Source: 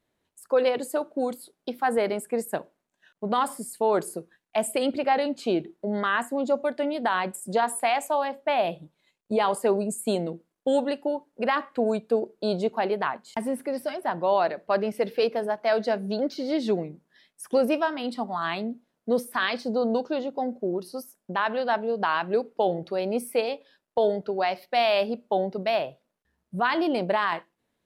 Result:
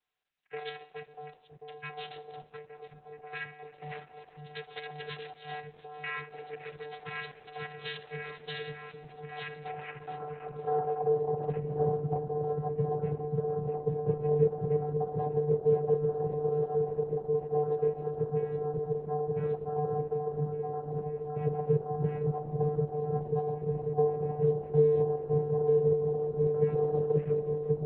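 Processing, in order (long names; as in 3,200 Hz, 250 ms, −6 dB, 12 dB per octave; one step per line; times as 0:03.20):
frequency inversion band by band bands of 1,000 Hz
on a send at −16 dB: convolution reverb RT60 1.7 s, pre-delay 54 ms
on the sum: dynamic equaliser 980 Hz, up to −5 dB, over −41 dBFS, Q 2.9
0:15.72–0:16.21: low-pass filter 5,400 Hz → 2,900 Hz 12 dB per octave
0:21.72–0:23.01: mains-hum notches 60/120/180/240/300/360/420/480 Hz
echo whose low-pass opens from repeat to repeat 541 ms, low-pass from 200 Hz, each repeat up 1 octave, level 0 dB
band-pass filter sweep 2,800 Hz → 310 Hz, 0:09.57–0:11.57
0:11.76–0:12.16: low-shelf EQ 140 Hz +10.5 dB
channel vocoder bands 8, square 149 Hz
in parallel at +2.5 dB: downward compressor 6 to 1, threshold −41 dBFS, peak gain reduction 19.5 dB
on the sum: Opus 8 kbit/s 48,000 Hz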